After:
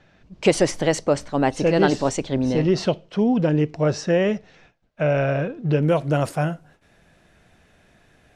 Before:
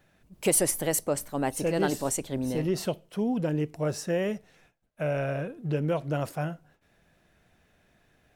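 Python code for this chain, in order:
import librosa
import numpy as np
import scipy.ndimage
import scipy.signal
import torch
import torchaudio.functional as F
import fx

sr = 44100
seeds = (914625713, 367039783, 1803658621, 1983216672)

y = fx.lowpass(x, sr, hz=fx.steps((0.0, 5800.0), (5.83, 11000.0)), slope=24)
y = y * 10.0 ** (8.5 / 20.0)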